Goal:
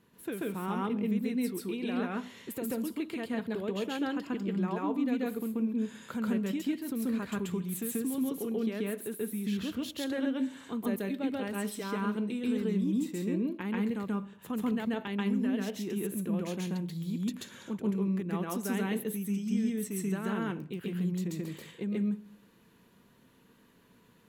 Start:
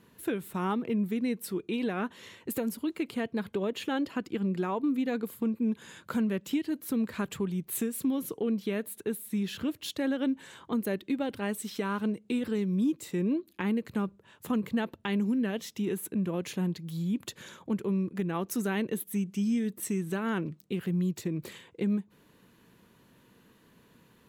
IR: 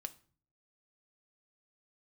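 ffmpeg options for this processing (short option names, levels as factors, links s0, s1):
-filter_complex "[0:a]asplit=2[s0][s1];[1:a]atrim=start_sample=2205,asetrate=35280,aresample=44100,adelay=135[s2];[s1][s2]afir=irnorm=-1:irlink=0,volume=1.58[s3];[s0][s3]amix=inputs=2:normalize=0,volume=0.501"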